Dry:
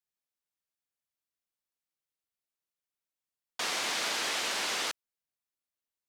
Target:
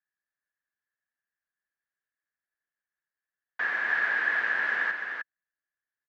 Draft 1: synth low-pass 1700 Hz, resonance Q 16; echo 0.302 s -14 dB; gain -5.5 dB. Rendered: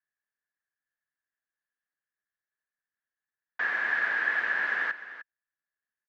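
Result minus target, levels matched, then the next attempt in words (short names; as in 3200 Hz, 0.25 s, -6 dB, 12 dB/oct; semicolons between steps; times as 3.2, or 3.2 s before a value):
echo-to-direct -8.5 dB
synth low-pass 1700 Hz, resonance Q 16; echo 0.302 s -5.5 dB; gain -5.5 dB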